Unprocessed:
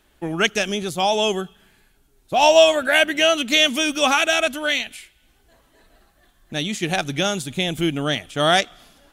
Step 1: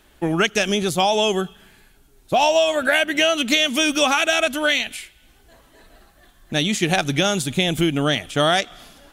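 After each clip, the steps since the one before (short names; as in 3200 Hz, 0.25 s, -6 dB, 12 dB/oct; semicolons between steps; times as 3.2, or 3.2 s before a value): compressor 6:1, threshold -20 dBFS, peak gain reduction 11.5 dB; gain +5.5 dB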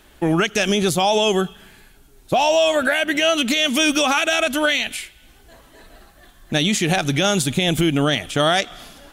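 limiter -12.5 dBFS, peak gain reduction 9 dB; gain +4 dB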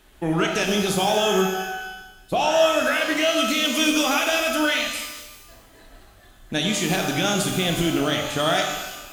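shimmer reverb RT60 1.1 s, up +12 st, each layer -8 dB, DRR 2 dB; gain -5.5 dB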